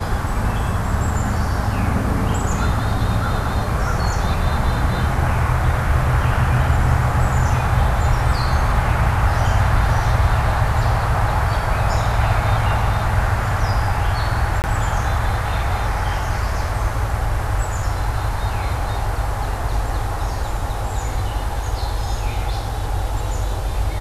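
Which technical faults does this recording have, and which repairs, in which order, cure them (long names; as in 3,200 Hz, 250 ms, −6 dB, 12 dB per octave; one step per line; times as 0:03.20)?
0:14.62–0:14.64: drop-out 19 ms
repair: repair the gap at 0:14.62, 19 ms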